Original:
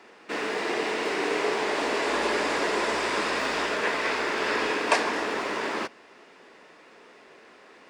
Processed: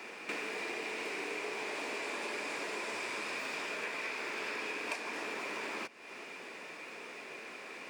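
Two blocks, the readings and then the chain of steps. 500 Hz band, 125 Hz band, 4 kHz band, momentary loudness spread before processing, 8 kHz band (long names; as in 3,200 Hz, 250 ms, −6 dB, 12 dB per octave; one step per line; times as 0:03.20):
−14.0 dB, −14.0 dB, −11.0 dB, 5 LU, −9.0 dB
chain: parametric band 2,400 Hz +12 dB 0.21 octaves
in parallel at −9 dB: hard clipping −17.5 dBFS, distortion −17 dB
on the sum: high-shelf EQ 7,700 Hz +12 dB
downward compressor 6 to 1, threshold −38 dBFS, peak gain reduction 23.5 dB
high-pass filter 93 Hz 24 dB per octave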